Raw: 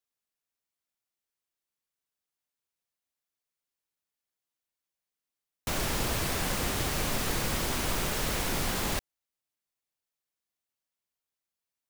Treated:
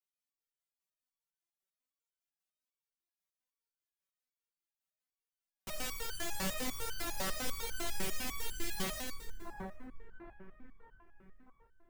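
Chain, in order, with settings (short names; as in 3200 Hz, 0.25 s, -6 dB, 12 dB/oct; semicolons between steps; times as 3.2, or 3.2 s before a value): 7.87–8.78 Chebyshev band-stop 430–1600 Hz, order 5; split-band echo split 1600 Hz, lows 0.671 s, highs 0.123 s, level -3 dB; stepped resonator 10 Hz 190–1500 Hz; gain +5.5 dB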